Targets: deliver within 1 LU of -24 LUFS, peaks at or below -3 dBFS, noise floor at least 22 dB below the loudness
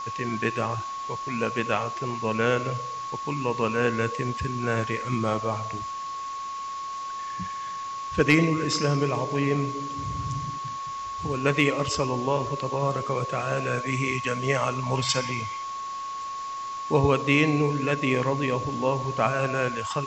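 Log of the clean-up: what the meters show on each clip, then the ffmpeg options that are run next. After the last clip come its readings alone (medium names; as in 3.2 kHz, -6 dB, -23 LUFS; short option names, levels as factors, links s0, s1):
steady tone 1.1 kHz; tone level -31 dBFS; noise floor -34 dBFS; noise floor target -49 dBFS; loudness -27.0 LUFS; peak level -7.0 dBFS; loudness target -24.0 LUFS
-> -af "bandreject=f=1100:w=30"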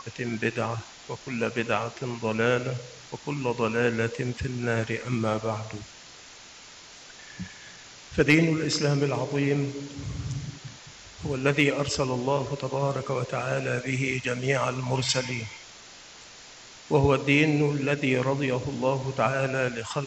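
steady tone not found; noise floor -48 dBFS; noise floor target -49 dBFS
-> -af "afftdn=nr=6:nf=-48"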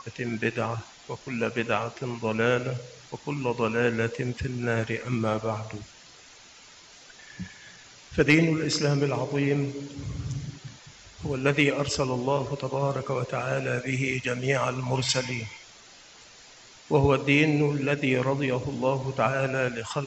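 noise floor -51 dBFS; loudness -26.5 LUFS; peak level -7.0 dBFS; loudness target -24.0 LUFS
-> -af "volume=1.33"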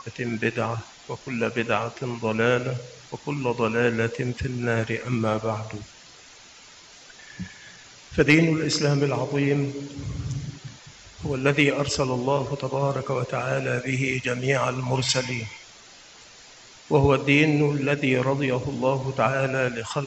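loudness -24.5 LUFS; peak level -4.5 dBFS; noise floor -48 dBFS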